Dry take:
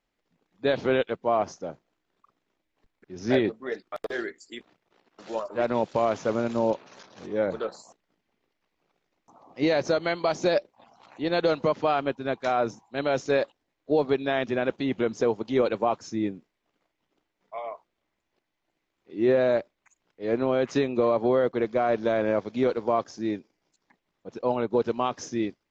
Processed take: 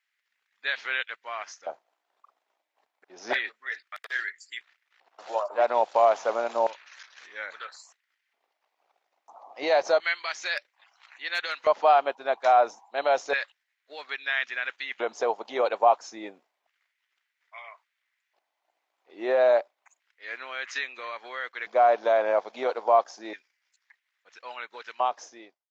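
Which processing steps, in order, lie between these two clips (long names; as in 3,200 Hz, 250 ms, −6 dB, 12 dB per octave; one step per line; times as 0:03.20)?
fade-out on the ending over 1.00 s
auto-filter high-pass square 0.3 Hz 730–1,800 Hz
0:10.55–0:11.54: hard clipping −19.5 dBFS, distortion −45 dB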